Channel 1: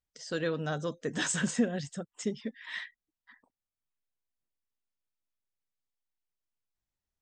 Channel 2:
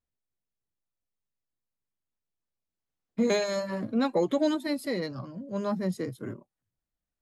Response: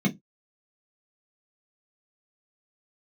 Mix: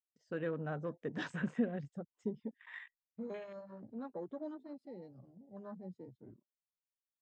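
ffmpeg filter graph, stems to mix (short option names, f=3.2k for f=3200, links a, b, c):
-filter_complex "[0:a]highshelf=f=2.8k:g=-12,agate=range=-33dB:threshold=-56dB:ratio=3:detection=peak,volume=-5.5dB[a];[1:a]lowpass=4.8k,volume=-18dB[b];[a][b]amix=inputs=2:normalize=0,afwtdn=0.00224"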